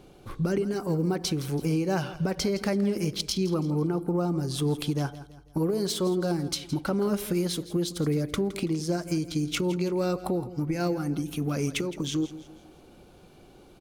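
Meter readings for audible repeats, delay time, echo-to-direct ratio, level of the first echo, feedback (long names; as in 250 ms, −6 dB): 3, 165 ms, −14.5 dB, −15.5 dB, 42%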